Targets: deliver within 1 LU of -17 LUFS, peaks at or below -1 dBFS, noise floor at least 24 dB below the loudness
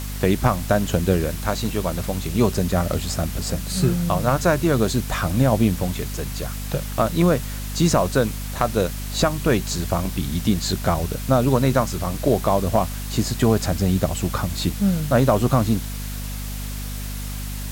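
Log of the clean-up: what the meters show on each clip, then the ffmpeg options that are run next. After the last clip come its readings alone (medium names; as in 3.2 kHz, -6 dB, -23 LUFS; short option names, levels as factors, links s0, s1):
hum 50 Hz; highest harmonic 250 Hz; hum level -27 dBFS; noise floor -29 dBFS; noise floor target -46 dBFS; loudness -22.0 LUFS; peak level -5.0 dBFS; loudness target -17.0 LUFS
-> -af "bandreject=f=50:t=h:w=6,bandreject=f=100:t=h:w=6,bandreject=f=150:t=h:w=6,bandreject=f=200:t=h:w=6,bandreject=f=250:t=h:w=6"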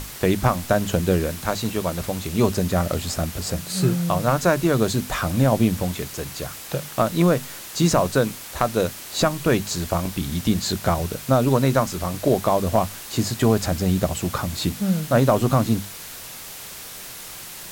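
hum not found; noise floor -37 dBFS; noise floor target -46 dBFS
-> -af "afftdn=nr=9:nf=-37"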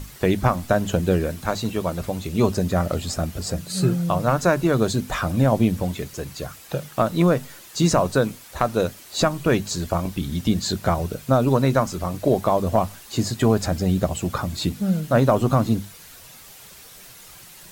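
noise floor -45 dBFS; noise floor target -47 dBFS
-> -af "afftdn=nr=6:nf=-45"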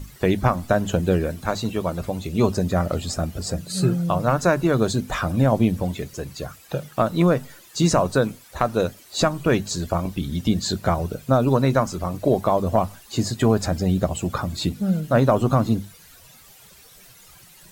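noise floor -49 dBFS; loudness -22.5 LUFS; peak level -5.0 dBFS; loudness target -17.0 LUFS
-> -af "volume=1.88,alimiter=limit=0.891:level=0:latency=1"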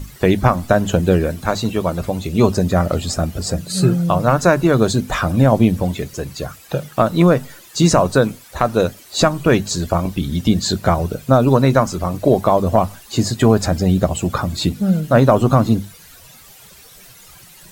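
loudness -17.0 LUFS; peak level -1.0 dBFS; noise floor -44 dBFS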